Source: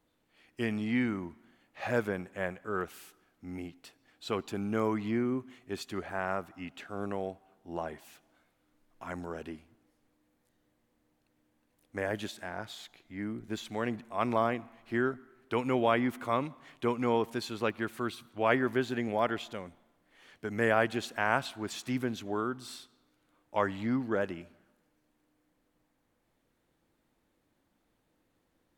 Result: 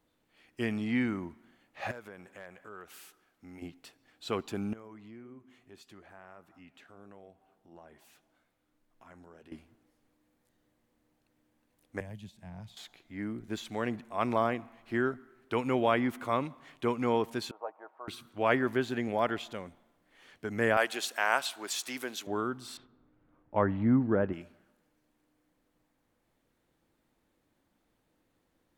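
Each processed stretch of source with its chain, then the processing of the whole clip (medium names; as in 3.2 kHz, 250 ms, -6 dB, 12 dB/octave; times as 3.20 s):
1.91–3.62 s: bass shelf 390 Hz -7.5 dB + compression 3:1, threshold -46 dBFS + hard clipper -35.5 dBFS
4.73–9.52 s: compression 2:1, threshold -54 dBFS + flange 1.7 Hz, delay 5.5 ms, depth 4.2 ms, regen -81%
12.00–12.77 s: FFT filter 180 Hz 0 dB, 330 Hz -20 dB, 980 Hz -16 dB, 1.4 kHz -26 dB, 2.5 kHz -15 dB + three bands compressed up and down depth 100%
17.51–18.08 s: CVSD coder 64 kbps + Butterworth band-pass 770 Hz, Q 1.9 + comb 6.4 ms, depth 42%
20.77–22.27 s: high-pass 450 Hz + treble shelf 3.5 kHz +10 dB
22.77–24.33 s: low-pass 1.7 kHz + bass shelf 270 Hz +10.5 dB
whole clip: none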